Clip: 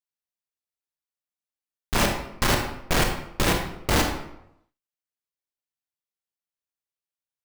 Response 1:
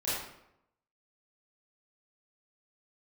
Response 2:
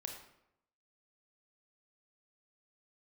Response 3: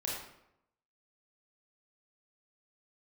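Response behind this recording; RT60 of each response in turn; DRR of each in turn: 2; 0.80 s, 0.80 s, 0.80 s; -11.5 dB, 2.0 dB, -4.5 dB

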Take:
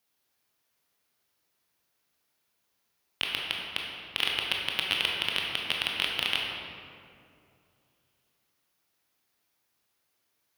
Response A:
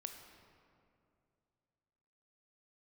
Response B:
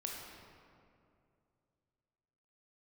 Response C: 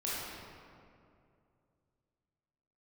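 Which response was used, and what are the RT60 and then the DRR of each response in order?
B; 2.5 s, 2.5 s, 2.5 s; 5.0 dB, -1.5 dB, -8.5 dB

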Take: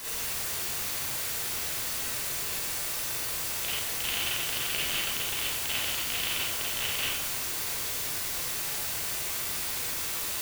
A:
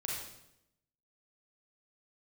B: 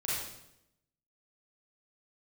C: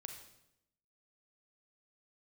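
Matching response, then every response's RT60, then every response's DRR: B; 0.80 s, 0.80 s, 0.80 s; -4.0 dB, -8.0 dB, 4.0 dB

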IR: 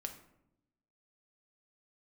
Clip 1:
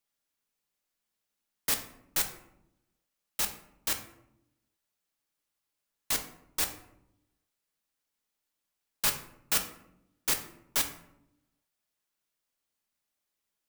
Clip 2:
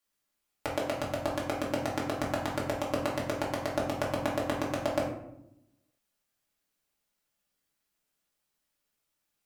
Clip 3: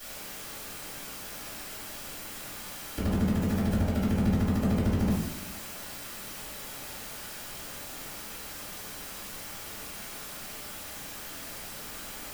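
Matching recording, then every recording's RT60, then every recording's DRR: 1; 0.80 s, 0.80 s, 0.80 s; 4.5 dB, -5.0 dB, -13.0 dB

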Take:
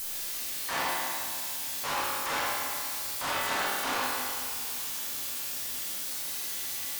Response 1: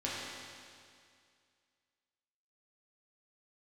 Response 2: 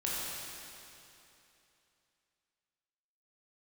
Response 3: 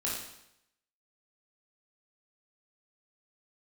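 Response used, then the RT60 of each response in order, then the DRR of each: 1; 2.2 s, 2.9 s, 0.80 s; -7.5 dB, -7.0 dB, -5.5 dB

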